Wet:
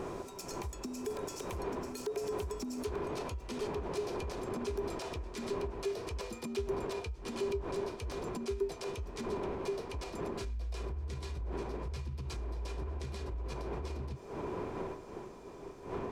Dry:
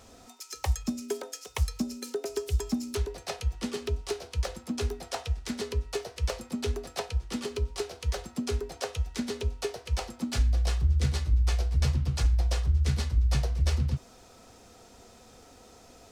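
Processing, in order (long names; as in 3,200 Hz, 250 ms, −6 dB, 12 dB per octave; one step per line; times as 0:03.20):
wind on the microphone 630 Hz −34 dBFS
source passing by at 0:04.24, 13 m/s, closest 13 metres
downward compressor 6 to 1, threshold −44 dBFS, peak gain reduction 20 dB
brickwall limiter −44 dBFS, peak gain reduction 12 dB
hollow resonant body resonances 390/1,000/2,400 Hz, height 11 dB, ringing for 45 ms
level +11 dB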